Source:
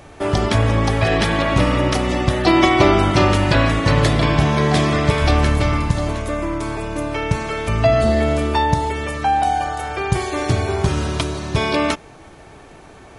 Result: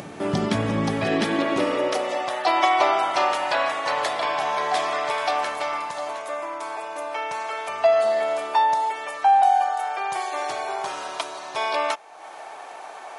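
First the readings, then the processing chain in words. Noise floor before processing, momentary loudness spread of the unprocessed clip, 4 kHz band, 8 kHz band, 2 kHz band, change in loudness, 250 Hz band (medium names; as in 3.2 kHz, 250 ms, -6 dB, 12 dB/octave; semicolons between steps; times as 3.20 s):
-42 dBFS, 9 LU, -6.0 dB, -6.5 dB, -5.5 dB, -5.5 dB, -10.5 dB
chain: upward compressor, threshold -23 dBFS; high-pass sweep 180 Hz -> 760 Hz, 0.89–2.37 s; trim -6.5 dB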